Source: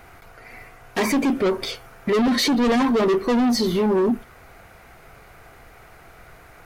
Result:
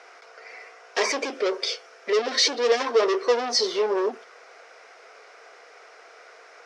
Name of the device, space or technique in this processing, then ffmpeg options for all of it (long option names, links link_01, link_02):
phone speaker on a table: -filter_complex "[0:a]asettb=1/sr,asplit=3[link_01][link_02][link_03];[link_01]atrim=end=1.244[link_04];[link_02]atrim=start=1.24:end=2.87,asetpts=PTS-STARTPTS,afade=type=in:duration=0.004:curve=qsin,afade=type=out:start_time=1.626:duration=0.004:curve=qsin,equalizer=frequency=1000:width=1.2:gain=-4.5[link_05];[link_03]atrim=start=2.866[link_06];[link_04][link_05]acrossfade=duration=0.004:curve1=hsin:curve2=qsin[link_07];[link_07][link_06]acrossfade=duration=0.004:curve1=qsin:curve2=hsin,highpass=frequency=460:width=0.5412,highpass=frequency=460:width=1.3066,equalizer=frequency=460:width_type=q:width=4:gain=7,equalizer=frequency=840:width_type=q:width=4:gain=-4,equalizer=frequency=5400:width_type=q:width=4:gain=10,lowpass=frequency=7000:width=0.5412,lowpass=frequency=7000:width=1.3066"